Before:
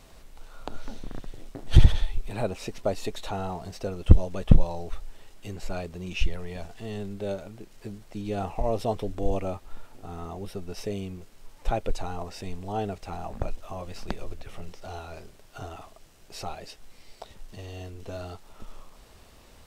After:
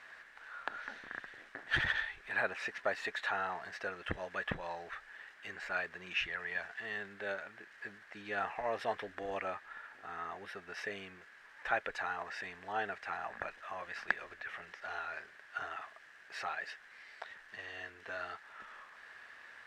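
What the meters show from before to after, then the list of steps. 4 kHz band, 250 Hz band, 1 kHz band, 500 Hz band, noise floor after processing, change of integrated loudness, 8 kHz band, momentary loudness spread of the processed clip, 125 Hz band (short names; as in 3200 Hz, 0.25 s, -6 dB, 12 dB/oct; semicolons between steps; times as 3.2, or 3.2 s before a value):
-4.5 dB, -18.5 dB, -3.0 dB, -9.5 dB, -58 dBFS, -9.5 dB, n/a, 15 LU, -26.5 dB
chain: in parallel at -5.5 dB: soft clip -15 dBFS, distortion -7 dB; on the sum: band-pass 1700 Hz, Q 7.4; gain +13.5 dB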